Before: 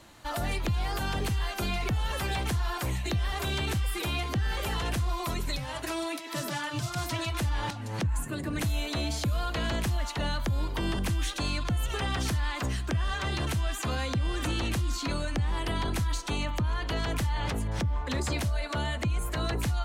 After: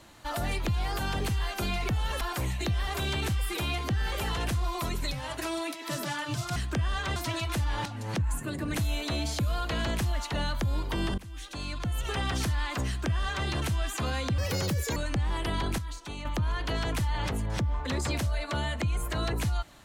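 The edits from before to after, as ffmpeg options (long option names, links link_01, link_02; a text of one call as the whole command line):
ffmpeg -i in.wav -filter_complex "[0:a]asplit=9[link_01][link_02][link_03][link_04][link_05][link_06][link_07][link_08][link_09];[link_01]atrim=end=2.212[link_10];[link_02]atrim=start=2.658:end=7.012[link_11];[link_03]atrim=start=12.718:end=13.322[link_12];[link_04]atrim=start=7.008:end=11.03,asetpts=PTS-STARTPTS,afade=type=out:start_time=4.018:duration=0.004:curve=hsin:silence=0.0891251[link_13];[link_05]atrim=start=11.03:end=14.234,asetpts=PTS-STARTPTS,afade=type=in:duration=0.98:silence=0.0891251[link_14];[link_06]atrim=start=14.23:end=15.18,asetpts=PTS-STARTPTS,asetrate=71883,aresample=44100,atrim=end_sample=25702,asetpts=PTS-STARTPTS[link_15];[link_07]atrim=start=15.176:end=16.002[link_16];[link_08]atrim=start=15.998:end=16.472,asetpts=PTS-STARTPTS,volume=-8dB[link_17];[link_09]atrim=start=16.468[link_18];[link_10][link_11]acrossfade=duration=0.004:curve1=hsin:curve2=hsin[link_19];[link_19][link_12]acrossfade=duration=0.004:curve1=hsin:curve2=hsin[link_20];[link_13][link_14]concat=n=2:v=0:a=1[link_21];[link_20][link_21]acrossfade=duration=0.004:curve1=hsin:curve2=hsin[link_22];[link_22][link_15]acrossfade=duration=0.004:curve1=hsin:curve2=hsin[link_23];[link_23][link_16]acrossfade=duration=0.004:curve1=hsin:curve2=hsin[link_24];[link_24][link_17]acrossfade=duration=0.004:curve1=hsin:curve2=hsin[link_25];[link_25][link_18]acrossfade=duration=0.004:curve1=hsin:curve2=hsin" out.wav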